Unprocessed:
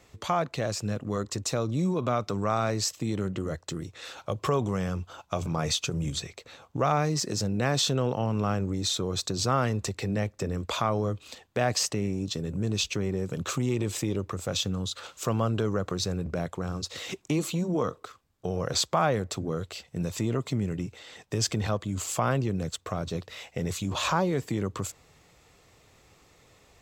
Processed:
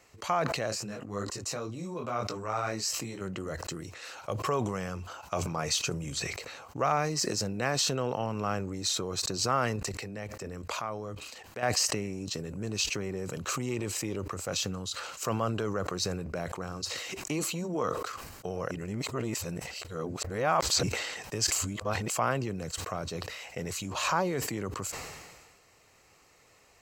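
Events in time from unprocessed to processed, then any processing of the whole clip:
0:00.70–0:03.20: micro pitch shift up and down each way 30 cents → 18 cents
0:09.76–0:11.63: output level in coarse steps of 11 dB
0:18.71–0:20.83: reverse
0:21.52–0:22.10: reverse
whole clip: low-shelf EQ 380 Hz −9.5 dB; notch filter 3,500 Hz, Q 5.5; level that may fall only so fast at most 37 dB per second

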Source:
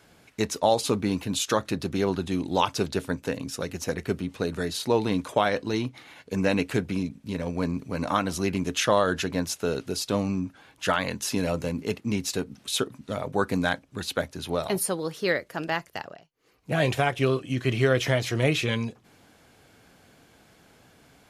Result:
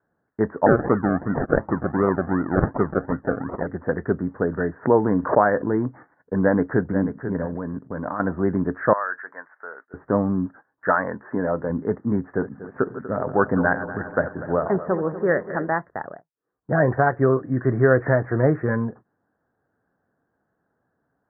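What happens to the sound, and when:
0:00.66–0:03.67: sample-and-hold swept by an LFO 37×, swing 60% 2.7 Hz
0:04.75–0:05.87: background raised ahead of every attack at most 120 dB per second
0:06.42–0:06.84: delay throw 490 ms, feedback 30%, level −9.5 dB
0:07.46–0:08.20: output level in coarse steps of 17 dB
0:08.93–0:09.94: high-pass filter 1,500 Hz
0:10.46–0:11.70: low-shelf EQ 180 Hz −9.5 dB
0:12.29–0:15.71: feedback delay that plays each chunk backwards 121 ms, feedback 72%, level −12 dB
whole clip: noise gate −45 dBFS, range −21 dB; Butterworth low-pass 1,800 Hz 96 dB per octave; low-shelf EQ 64 Hz −10.5 dB; level +6 dB

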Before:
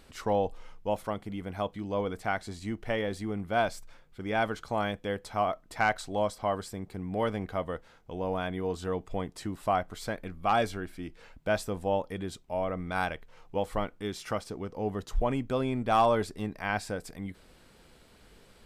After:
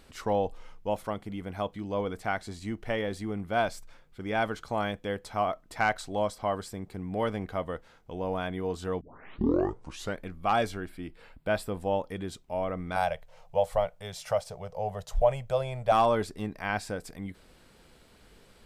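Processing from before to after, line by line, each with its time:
0:09.01: tape start 1.20 s
0:10.89–0:11.80: parametric band 6,200 Hz −13.5 dB 0.32 octaves
0:12.96–0:15.92: drawn EQ curve 170 Hz 0 dB, 280 Hz −28 dB, 590 Hz +10 dB, 1,200 Hz −4 dB, 7,000 Hz +2 dB

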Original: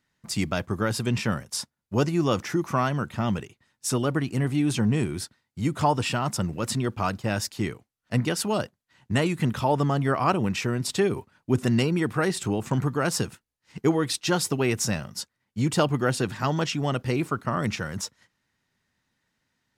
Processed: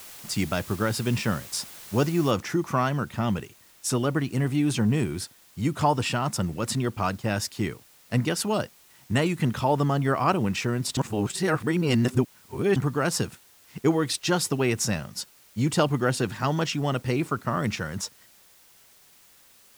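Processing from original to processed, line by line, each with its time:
0:02.31: noise floor change −44 dB −56 dB
0:10.97–0:12.76: reverse

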